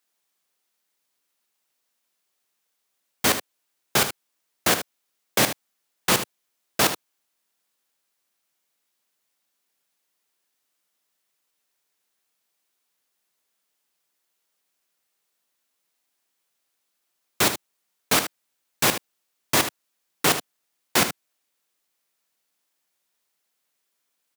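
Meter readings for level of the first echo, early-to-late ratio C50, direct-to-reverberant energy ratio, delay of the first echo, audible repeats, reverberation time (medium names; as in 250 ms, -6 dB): -10.5 dB, no reverb, no reverb, 76 ms, 1, no reverb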